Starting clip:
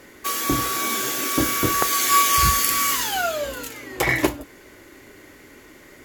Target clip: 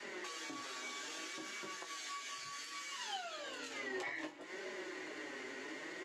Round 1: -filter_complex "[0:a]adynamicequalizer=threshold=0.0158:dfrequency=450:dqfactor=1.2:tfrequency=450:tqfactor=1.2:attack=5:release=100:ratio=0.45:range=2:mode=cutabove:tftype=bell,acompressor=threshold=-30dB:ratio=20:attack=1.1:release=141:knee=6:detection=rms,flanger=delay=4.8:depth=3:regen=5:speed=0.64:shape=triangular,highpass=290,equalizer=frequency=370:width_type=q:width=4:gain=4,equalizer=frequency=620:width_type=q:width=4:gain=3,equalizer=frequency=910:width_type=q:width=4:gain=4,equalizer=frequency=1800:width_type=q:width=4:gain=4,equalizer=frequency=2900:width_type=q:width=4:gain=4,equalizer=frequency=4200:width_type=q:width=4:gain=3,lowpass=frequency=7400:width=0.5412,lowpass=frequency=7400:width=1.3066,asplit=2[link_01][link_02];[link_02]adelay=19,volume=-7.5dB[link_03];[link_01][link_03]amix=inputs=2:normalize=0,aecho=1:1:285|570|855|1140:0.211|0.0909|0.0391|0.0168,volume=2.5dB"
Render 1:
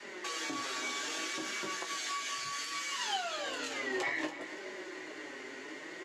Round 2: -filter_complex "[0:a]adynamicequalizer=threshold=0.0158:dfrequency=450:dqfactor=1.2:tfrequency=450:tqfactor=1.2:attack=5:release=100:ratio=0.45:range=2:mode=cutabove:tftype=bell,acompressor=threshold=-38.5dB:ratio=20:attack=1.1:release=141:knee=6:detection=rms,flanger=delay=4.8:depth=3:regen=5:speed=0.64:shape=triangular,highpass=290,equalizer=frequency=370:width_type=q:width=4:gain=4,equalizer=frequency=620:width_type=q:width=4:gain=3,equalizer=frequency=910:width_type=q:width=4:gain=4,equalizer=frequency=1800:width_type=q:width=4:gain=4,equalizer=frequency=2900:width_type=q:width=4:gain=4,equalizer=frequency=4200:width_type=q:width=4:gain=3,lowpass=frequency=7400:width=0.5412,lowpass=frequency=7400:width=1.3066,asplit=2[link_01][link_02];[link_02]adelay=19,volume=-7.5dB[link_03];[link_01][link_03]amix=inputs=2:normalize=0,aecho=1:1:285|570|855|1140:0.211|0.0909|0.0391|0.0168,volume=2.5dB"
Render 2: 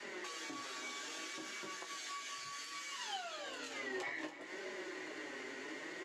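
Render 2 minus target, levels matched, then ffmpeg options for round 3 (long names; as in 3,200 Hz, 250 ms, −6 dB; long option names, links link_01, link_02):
echo-to-direct +9 dB
-filter_complex "[0:a]adynamicequalizer=threshold=0.0158:dfrequency=450:dqfactor=1.2:tfrequency=450:tqfactor=1.2:attack=5:release=100:ratio=0.45:range=2:mode=cutabove:tftype=bell,acompressor=threshold=-38.5dB:ratio=20:attack=1.1:release=141:knee=6:detection=rms,flanger=delay=4.8:depth=3:regen=5:speed=0.64:shape=triangular,highpass=290,equalizer=frequency=370:width_type=q:width=4:gain=4,equalizer=frequency=620:width_type=q:width=4:gain=3,equalizer=frequency=910:width_type=q:width=4:gain=4,equalizer=frequency=1800:width_type=q:width=4:gain=4,equalizer=frequency=2900:width_type=q:width=4:gain=4,equalizer=frequency=4200:width_type=q:width=4:gain=3,lowpass=frequency=7400:width=0.5412,lowpass=frequency=7400:width=1.3066,asplit=2[link_01][link_02];[link_02]adelay=19,volume=-7.5dB[link_03];[link_01][link_03]amix=inputs=2:normalize=0,aecho=1:1:285|570|855:0.075|0.0322|0.0139,volume=2.5dB"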